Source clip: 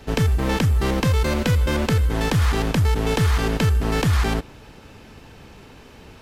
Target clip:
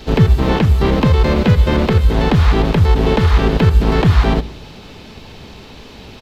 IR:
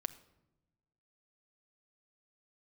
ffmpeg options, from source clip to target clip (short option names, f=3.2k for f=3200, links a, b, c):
-filter_complex "[0:a]equalizer=f=1.6k:t=o:w=0.67:g=-4,equalizer=f=4k:t=o:w=0.67:g=8,equalizer=f=10k:t=o:w=0.67:g=-7,acrossover=split=2500[a][b];[b]acompressor=threshold=-41dB:ratio=4:attack=1:release=60[c];[a][c]amix=inputs=2:normalize=0,asplit=3[d][e][f];[e]asetrate=37084,aresample=44100,atempo=1.18921,volume=-6dB[g];[f]asetrate=52444,aresample=44100,atempo=0.840896,volume=-13dB[h];[d][g][h]amix=inputs=3:normalize=0,asplit=2[i][j];[1:a]atrim=start_sample=2205,asetrate=52920,aresample=44100[k];[j][k]afir=irnorm=-1:irlink=0,volume=2dB[l];[i][l]amix=inputs=2:normalize=0,volume=1dB"